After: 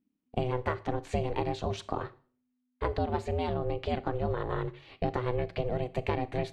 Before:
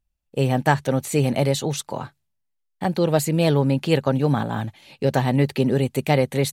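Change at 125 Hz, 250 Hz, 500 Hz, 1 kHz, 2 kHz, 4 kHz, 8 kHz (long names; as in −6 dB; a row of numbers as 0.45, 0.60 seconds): −13.0 dB, −14.0 dB, −9.5 dB, −7.5 dB, −12.0 dB, −14.0 dB, below −20 dB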